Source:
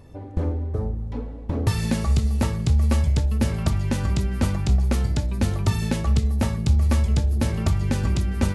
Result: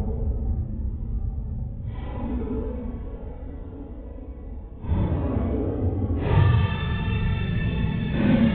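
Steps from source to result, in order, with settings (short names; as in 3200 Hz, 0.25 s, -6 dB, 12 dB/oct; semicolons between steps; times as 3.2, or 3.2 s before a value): steep low-pass 3600 Hz 96 dB/oct; Paulstretch 7.9×, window 0.05 s, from 0.87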